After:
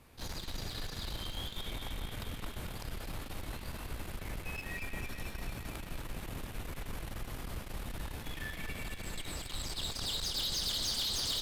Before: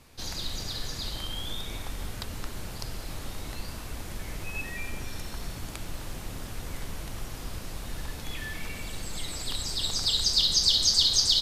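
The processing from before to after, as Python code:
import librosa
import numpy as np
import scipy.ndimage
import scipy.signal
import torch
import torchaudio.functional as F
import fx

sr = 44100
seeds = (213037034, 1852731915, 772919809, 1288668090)

y = fx.peak_eq(x, sr, hz=5700.0, db=-7.5, octaves=1.4)
y = fx.tube_stage(y, sr, drive_db=32.0, bias=0.6)
y = fx.echo_banded(y, sr, ms=222, feedback_pct=75, hz=2800.0, wet_db=-5.5)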